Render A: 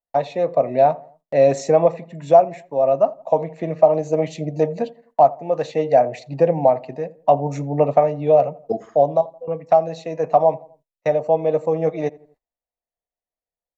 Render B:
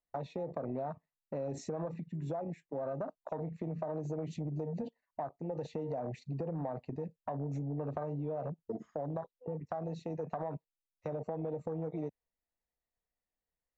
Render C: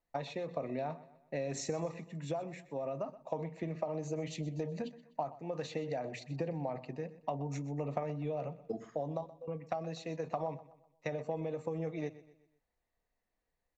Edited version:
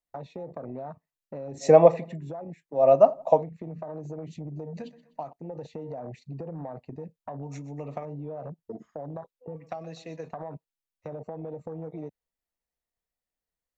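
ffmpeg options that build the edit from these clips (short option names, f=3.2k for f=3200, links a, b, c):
-filter_complex "[0:a]asplit=2[a][b];[2:a]asplit=3[c][d][e];[1:a]asplit=6[f][g][h][i][j][k];[f]atrim=end=1.66[l];[a]atrim=start=1.6:end=2.19[m];[g]atrim=start=2.13:end=2.88[n];[b]atrim=start=2.72:end=3.46[o];[h]atrim=start=3.3:end=4.772[p];[c]atrim=start=4.768:end=5.332[q];[i]atrim=start=5.328:end=7.432[r];[d]atrim=start=7.428:end=8.052[s];[j]atrim=start=8.048:end=9.562[t];[e]atrim=start=9.558:end=10.312[u];[k]atrim=start=10.308[v];[l][m]acrossfade=d=0.06:c1=tri:c2=tri[w];[w][n]acrossfade=d=0.06:c1=tri:c2=tri[x];[x][o]acrossfade=d=0.16:c1=tri:c2=tri[y];[y][p]acrossfade=d=0.16:c1=tri:c2=tri[z];[z][q]acrossfade=d=0.004:c1=hsin:c2=hsin[aa];[aa][r]acrossfade=d=0.004:c1=hsin:c2=hsin[ab];[ab][s]acrossfade=d=0.004:c1=hsin:c2=hsin[ac];[ac][t]acrossfade=d=0.004:c1=hsin:c2=hsin[ad];[ad][u]acrossfade=d=0.004:c1=hsin:c2=hsin[ae];[ae][v]acrossfade=d=0.004:c1=hsin:c2=hsin"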